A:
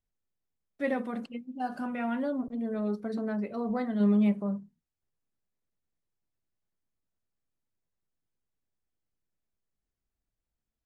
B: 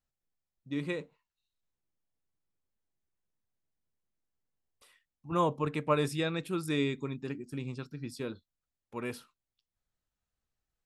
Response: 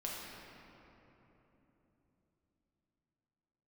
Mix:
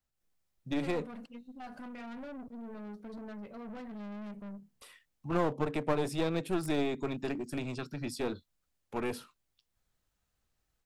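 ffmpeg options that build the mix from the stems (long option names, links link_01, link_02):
-filter_complex "[0:a]equalizer=frequency=370:width=5.6:gain=-6.5,aeval=exprs='(tanh(63.1*val(0)+0.35)-tanh(0.35))/63.1':channel_layout=same,volume=-12.5dB[link_01];[1:a]acrossover=split=260|750[link_02][link_03][link_04];[link_02]acompressor=threshold=-46dB:ratio=4[link_05];[link_03]acompressor=threshold=-33dB:ratio=4[link_06];[link_04]acompressor=threshold=-48dB:ratio=4[link_07];[link_05][link_06][link_07]amix=inputs=3:normalize=0,volume=0.5dB[link_08];[link_01][link_08]amix=inputs=2:normalize=0,dynaudnorm=framelen=120:gausssize=3:maxgain=7dB,aeval=exprs='clip(val(0),-1,0.0188)':channel_layout=same"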